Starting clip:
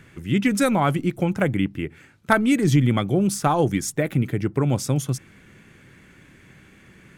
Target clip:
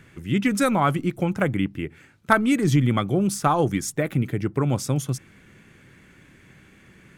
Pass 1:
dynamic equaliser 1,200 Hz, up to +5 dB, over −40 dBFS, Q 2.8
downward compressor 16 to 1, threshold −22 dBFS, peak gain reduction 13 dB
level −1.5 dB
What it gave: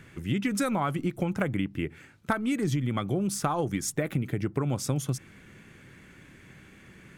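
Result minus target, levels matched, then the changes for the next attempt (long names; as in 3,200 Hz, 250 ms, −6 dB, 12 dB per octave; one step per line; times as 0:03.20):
downward compressor: peak gain reduction +13 dB
remove: downward compressor 16 to 1, threshold −22 dBFS, peak gain reduction 13 dB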